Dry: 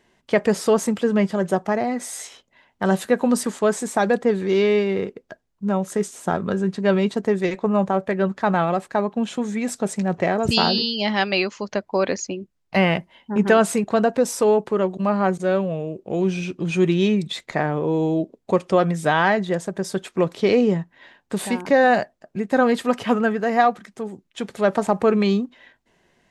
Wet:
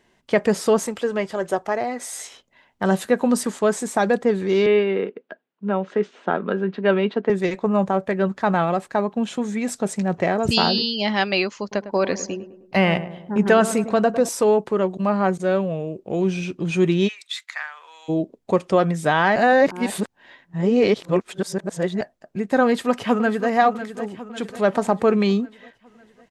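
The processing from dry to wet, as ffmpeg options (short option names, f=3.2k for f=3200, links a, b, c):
-filter_complex "[0:a]asettb=1/sr,asplit=3[a][b][c];[a]atrim=end=0.864[d];[b]atrim=start=0.86:end=2.13,asetpts=PTS-STARTPTS,afade=t=in:d=0.004:c=qsin,afade=t=out:st=1.266:d=0.004:c=qsin,equalizer=f=190:w=1.5:g=-11.5[e];[c]atrim=start=2.126[f];[d][e]acrossfade=d=0.004:c1=hsin:c2=qsin[g];[g][f]acrossfade=d=0.004:c1=qsin:c2=hsin,asettb=1/sr,asplit=3[h][i][j];[h]atrim=end=4.664[k];[i]atrim=start=4.66:end=7.3,asetpts=PTS-STARTPTS,afade=t=in:d=0.004:c=qsin,afade=t=out:st=2.636:d=0.004:c=qsin,highpass=f=200:w=0.5412,highpass=f=200:w=1.3066,equalizer=f=450:t=q:w=4:g=3,equalizer=f=1.5k:t=q:w=4:g=4,equalizer=f=2.8k:t=q:w=4:g=3,lowpass=f=3.6k:w=0.5412,lowpass=f=3.6k:w=1.3066[l];[j]atrim=start=7.296[m];[k][l]acrossfade=d=0.004:c1=hsin:c2=qsin[n];[n][m]acrossfade=d=0.004:c1=qsin:c2=hsin,asettb=1/sr,asplit=3[o][p][q];[o]atrim=end=11.614[r];[p]atrim=start=11.61:end=14.29,asetpts=PTS-STARTPTS,afade=t=in:d=0.004:c=qsin,afade=t=out:st=2.676:d=0.004:c=qsin,asplit=2[s][t];[t]adelay=104,lowpass=f=1.4k:p=1,volume=-12dB,asplit=2[u][v];[v]adelay=104,lowpass=f=1.4k:p=1,volume=0.53,asplit=2[w][x];[x]adelay=104,lowpass=f=1.4k:p=1,volume=0.53,asplit=2[y][z];[z]adelay=104,lowpass=f=1.4k:p=1,volume=0.53,asplit=2[aa][ab];[ab]adelay=104,lowpass=f=1.4k:p=1,volume=0.53,asplit=2[ac][ad];[ad]adelay=104,lowpass=f=1.4k:p=1,volume=0.53[ae];[s][u][w][y][aa][ac][ae]amix=inputs=7:normalize=0,atrim=end_sample=118188[af];[q]atrim=start=14.286[ag];[r][af]acrossfade=d=0.004:c1=hsin:c2=qsin[ah];[ah][ag]acrossfade=d=0.004:c1=qsin:c2=hsin,asplit=3[ai][aj][ak];[ai]afade=t=out:st=17.07:d=0.02[al];[aj]highpass=f=1.3k:w=0.5412,highpass=f=1.3k:w=1.3066,afade=t=in:st=17.07:d=0.02,afade=t=out:st=18.08:d=0.02[am];[ak]afade=t=in:st=18.08:d=0.02[an];[al][am][an]amix=inputs=3:normalize=0,asplit=2[ao][ap];[ap]afade=t=in:st=22.64:d=0.01,afade=t=out:st=23.5:d=0.01,aecho=0:1:550|1100|1650|2200|2750|3300:0.266073|0.14634|0.0804869|0.0442678|0.0243473|0.013391[aq];[ao][aq]amix=inputs=2:normalize=0,asplit=3[ar][as][at];[ar]atrim=end=19.362[au];[as]atrim=start=19.358:end=22.012,asetpts=PTS-STARTPTS,areverse[av];[at]atrim=start=22.008[aw];[au][av]acrossfade=d=0.004:c1=hsin:c2=hsin[ax];[ax][aw]acrossfade=d=0.004:c1=hsin:c2=hsin"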